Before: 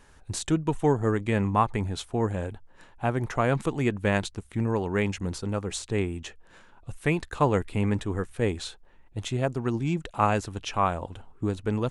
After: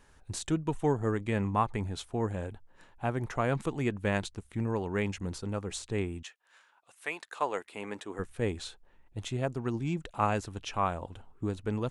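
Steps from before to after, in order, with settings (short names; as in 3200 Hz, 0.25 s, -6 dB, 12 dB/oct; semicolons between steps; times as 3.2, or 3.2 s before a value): 6.22–8.18 HPF 1300 Hz -> 340 Hz 12 dB/oct; gain -5 dB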